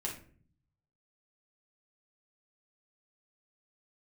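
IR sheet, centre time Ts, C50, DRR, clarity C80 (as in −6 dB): 26 ms, 7.0 dB, −3.0 dB, 12.5 dB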